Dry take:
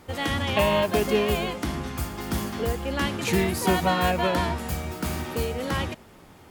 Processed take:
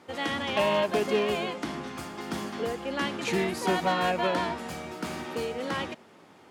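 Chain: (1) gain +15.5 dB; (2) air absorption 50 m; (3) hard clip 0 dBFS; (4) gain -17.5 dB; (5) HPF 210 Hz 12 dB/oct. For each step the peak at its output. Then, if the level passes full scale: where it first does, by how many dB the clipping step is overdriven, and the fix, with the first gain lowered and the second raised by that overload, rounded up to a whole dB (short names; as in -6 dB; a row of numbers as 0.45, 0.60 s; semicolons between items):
+7.5, +7.0, 0.0, -17.5, -12.5 dBFS; step 1, 7.0 dB; step 1 +8.5 dB, step 4 -10.5 dB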